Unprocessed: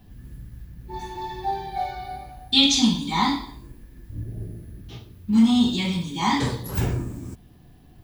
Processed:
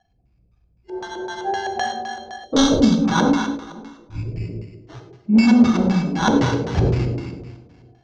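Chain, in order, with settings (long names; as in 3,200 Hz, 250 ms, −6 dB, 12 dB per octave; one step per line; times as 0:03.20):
noise reduction from a noise print of the clip's start 26 dB
delay that swaps between a low-pass and a high-pass 186 ms, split 2,300 Hz, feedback 50%, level −9 dB
decimation without filtering 18×
auto-filter low-pass square 3.9 Hz 510–6,000 Hz
high-frequency loss of the air 140 metres
reverb whose tail is shaped and stops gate 130 ms flat, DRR 6 dB
gain on a spectral selection 0:02.45–0:03.05, 650–2,900 Hz −11 dB
level +4 dB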